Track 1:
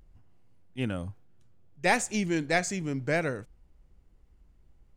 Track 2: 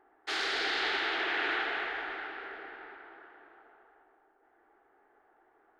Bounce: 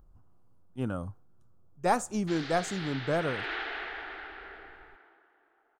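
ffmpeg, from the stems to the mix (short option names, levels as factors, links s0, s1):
-filter_complex "[0:a]highshelf=f=1600:t=q:w=3:g=-8,volume=0.841[s0];[1:a]lowpass=f=6400:w=0.5412,lowpass=f=6400:w=1.3066,adelay=2000,volume=0.668,afade=t=in:st=3.12:d=0.42:silence=0.446684,afade=t=out:st=4.55:d=0.68:silence=0.375837[s1];[s0][s1]amix=inputs=2:normalize=0,highshelf=f=8100:g=8.5"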